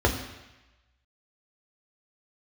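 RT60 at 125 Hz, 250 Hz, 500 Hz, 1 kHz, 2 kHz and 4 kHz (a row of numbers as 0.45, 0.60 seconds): 1.0, 0.95, 0.95, 1.1, 1.2, 1.1 seconds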